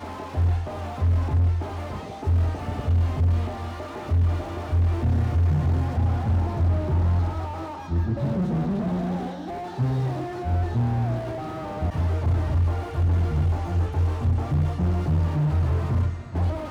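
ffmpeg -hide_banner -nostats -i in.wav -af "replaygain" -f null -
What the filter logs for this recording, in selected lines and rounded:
track_gain = +10.9 dB
track_peak = 0.140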